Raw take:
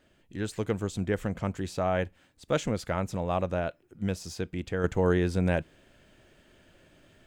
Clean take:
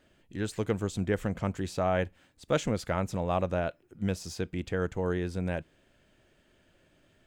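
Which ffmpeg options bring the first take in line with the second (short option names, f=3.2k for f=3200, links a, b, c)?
-af "asetnsamples=n=441:p=0,asendcmd='4.84 volume volume -6dB',volume=0dB"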